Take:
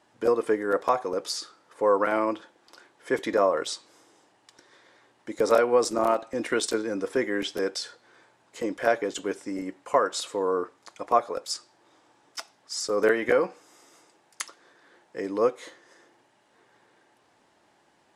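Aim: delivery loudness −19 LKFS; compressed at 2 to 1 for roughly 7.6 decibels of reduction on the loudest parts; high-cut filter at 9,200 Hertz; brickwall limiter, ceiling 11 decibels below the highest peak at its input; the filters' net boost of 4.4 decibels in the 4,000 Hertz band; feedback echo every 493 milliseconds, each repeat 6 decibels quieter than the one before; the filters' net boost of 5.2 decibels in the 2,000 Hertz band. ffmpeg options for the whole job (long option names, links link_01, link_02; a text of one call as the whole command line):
ffmpeg -i in.wav -af "lowpass=9200,equalizer=frequency=2000:width_type=o:gain=6,equalizer=frequency=4000:width_type=o:gain=4.5,acompressor=threshold=-29dB:ratio=2,alimiter=limit=-22.5dB:level=0:latency=1,aecho=1:1:493|986|1479|1972|2465|2958:0.501|0.251|0.125|0.0626|0.0313|0.0157,volume=15dB" out.wav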